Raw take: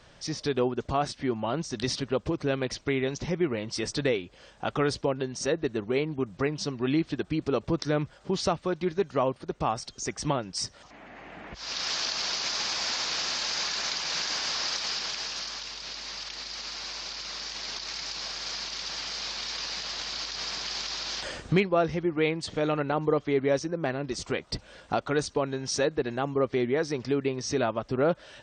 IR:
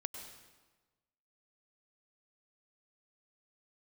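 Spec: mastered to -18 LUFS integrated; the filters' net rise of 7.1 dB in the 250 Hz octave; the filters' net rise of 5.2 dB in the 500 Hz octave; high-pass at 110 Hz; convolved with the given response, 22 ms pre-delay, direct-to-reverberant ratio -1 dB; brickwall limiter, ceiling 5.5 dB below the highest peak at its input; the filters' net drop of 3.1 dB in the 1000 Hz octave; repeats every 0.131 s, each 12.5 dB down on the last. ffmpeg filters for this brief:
-filter_complex "[0:a]highpass=110,equalizer=f=250:t=o:g=8,equalizer=f=500:t=o:g=5.5,equalizer=f=1k:t=o:g=-8,alimiter=limit=-13dB:level=0:latency=1,aecho=1:1:131|262|393:0.237|0.0569|0.0137,asplit=2[a][b];[1:a]atrim=start_sample=2205,adelay=22[c];[b][c]afir=irnorm=-1:irlink=0,volume=2.5dB[d];[a][d]amix=inputs=2:normalize=0,volume=4.5dB"

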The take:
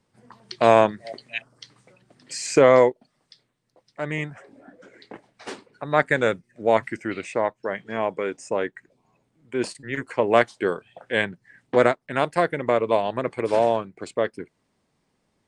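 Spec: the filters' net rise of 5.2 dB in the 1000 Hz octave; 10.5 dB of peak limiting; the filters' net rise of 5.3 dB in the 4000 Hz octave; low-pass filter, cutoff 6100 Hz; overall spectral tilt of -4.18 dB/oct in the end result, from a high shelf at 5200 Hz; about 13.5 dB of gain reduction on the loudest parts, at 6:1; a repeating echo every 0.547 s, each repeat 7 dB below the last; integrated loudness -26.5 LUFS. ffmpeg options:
-af "lowpass=6.1k,equalizer=f=1k:t=o:g=6.5,equalizer=f=4k:t=o:g=8.5,highshelf=f=5.2k:g=-3.5,acompressor=threshold=-22dB:ratio=6,alimiter=limit=-16dB:level=0:latency=1,aecho=1:1:547|1094|1641|2188|2735:0.447|0.201|0.0905|0.0407|0.0183,volume=4.5dB"

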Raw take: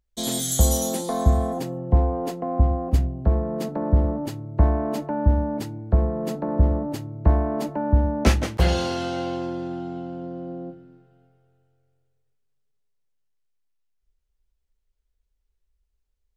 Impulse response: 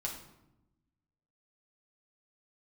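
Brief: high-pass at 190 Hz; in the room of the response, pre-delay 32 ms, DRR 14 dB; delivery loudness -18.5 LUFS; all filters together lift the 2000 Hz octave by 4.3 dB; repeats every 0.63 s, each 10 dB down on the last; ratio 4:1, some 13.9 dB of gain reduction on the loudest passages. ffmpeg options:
-filter_complex "[0:a]highpass=190,equalizer=f=2k:t=o:g=5.5,acompressor=threshold=-33dB:ratio=4,aecho=1:1:630|1260|1890|2520:0.316|0.101|0.0324|0.0104,asplit=2[a][b];[1:a]atrim=start_sample=2205,adelay=32[c];[b][c]afir=irnorm=-1:irlink=0,volume=-15dB[d];[a][d]amix=inputs=2:normalize=0,volume=17dB"

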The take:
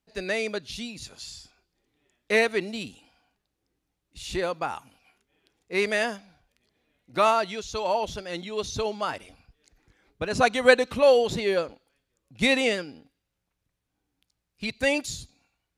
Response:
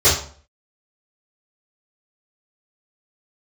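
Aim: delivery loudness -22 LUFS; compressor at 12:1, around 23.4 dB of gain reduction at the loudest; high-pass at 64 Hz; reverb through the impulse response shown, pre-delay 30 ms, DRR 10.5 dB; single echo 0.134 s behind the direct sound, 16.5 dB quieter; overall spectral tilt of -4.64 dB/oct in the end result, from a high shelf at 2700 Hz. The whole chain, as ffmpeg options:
-filter_complex "[0:a]highpass=64,highshelf=f=2.7k:g=-8.5,acompressor=threshold=-36dB:ratio=12,aecho=1:1:134:0.15,asplit=2[a][b];[1:a]atrim=start_sample=2205,adelay=30[c];[b][c]afir=irnorm=-1:irlink=0,volume=-32.5dB[d];[a][d]amix=inputs=2:normalize=0,volume=19dB"

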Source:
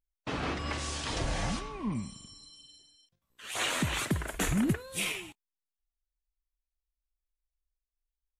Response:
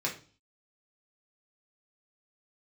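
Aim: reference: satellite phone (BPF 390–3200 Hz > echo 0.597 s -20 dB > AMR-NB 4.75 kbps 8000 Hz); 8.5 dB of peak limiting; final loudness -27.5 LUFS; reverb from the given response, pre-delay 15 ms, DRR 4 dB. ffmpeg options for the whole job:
-filter_complex "[0:a]alimiter=level_in=2dB:limit=-24dB:level=0:latency=1,volume=-2dB,asplit=2[a][b];[1:a]atrim=start_sample=2205,adelay=15[c];[b][c]afir=irnorm=-1:irlink=0,volume=-10dB[d];[a][d]amix=inputs=2:normalize=0,highpass=390,lowpass=3.2k,aecho=1:1:597:0.1,volume=16.5dB" -ar 8000 -c:a libopencore_amrnb -b:a 4750

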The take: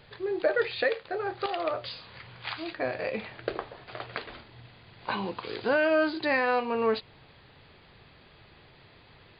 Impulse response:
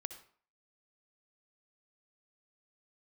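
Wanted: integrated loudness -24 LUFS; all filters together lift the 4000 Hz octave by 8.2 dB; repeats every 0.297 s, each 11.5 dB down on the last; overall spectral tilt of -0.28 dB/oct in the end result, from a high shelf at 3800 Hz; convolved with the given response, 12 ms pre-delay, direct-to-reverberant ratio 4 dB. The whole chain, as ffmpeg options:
-filter_complex "[0:a]highshelf=f=3.8k:g=8,equalizer=f=4k:t=o:g=5,aecho=1:1:297|594|891:0.266|0.0718|0.0194,asplit=2[a][b];[1:a]atrim=start_sample=2205,adelay=12[c];[b][c]afir=irnorm=-1:irlink=0,volume=-1.5dB[d];[a][d]amix=inputs=2:normalize=0,volume=3dB"

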